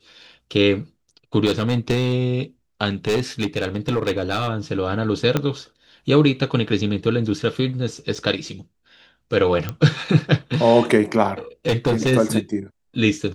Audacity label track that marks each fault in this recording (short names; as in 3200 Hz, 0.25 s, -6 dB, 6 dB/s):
1.450000	2.140000	clipped -13.5 dBFS
3.070000	4.480000	clipped -15.5 dBFS
5.370000	5.370000	pop -6 dBFS
8.150000	8.150000	gap 3.8 ms
9.690000	9.690000	pop -12 dBFS
11.670000	12.130000	clipped -14 dBFS